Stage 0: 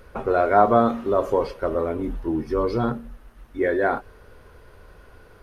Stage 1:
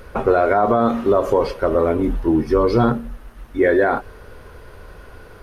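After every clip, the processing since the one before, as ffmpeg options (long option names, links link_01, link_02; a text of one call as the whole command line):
ffmpeg -i in.wav -af "alimiter=limit=-14dB:level=0:latency=1:release=105,volume=8dB" out.wav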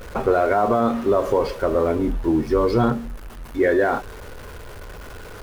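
ffmpeg -i in.wav -af "aeval=exprs='val(0)+0.5*0.0224*sgn(val(0))':channel_layout=same,volume=-3dB" out.wav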